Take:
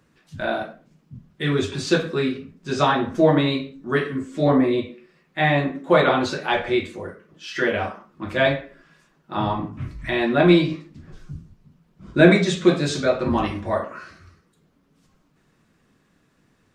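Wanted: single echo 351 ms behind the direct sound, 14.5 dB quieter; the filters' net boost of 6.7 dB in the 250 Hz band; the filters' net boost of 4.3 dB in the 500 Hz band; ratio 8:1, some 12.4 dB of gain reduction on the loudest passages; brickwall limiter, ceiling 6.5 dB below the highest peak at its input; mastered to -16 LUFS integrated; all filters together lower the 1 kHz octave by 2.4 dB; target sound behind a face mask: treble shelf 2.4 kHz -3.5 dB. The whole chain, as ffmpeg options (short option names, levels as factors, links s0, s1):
-af "equalizer=f=250:t=o:g=8,equalizer=f=500:t=o:g=4.5,equalizer=f=1000:t=o:g=-5.5,acompressor=threshold=0.158:ratio=8,alimiter=limit=0.224:level=0:latency=1,highshelf=f=2400:g=-3.5,aecho=1:1:351:0.188,volume=2.66"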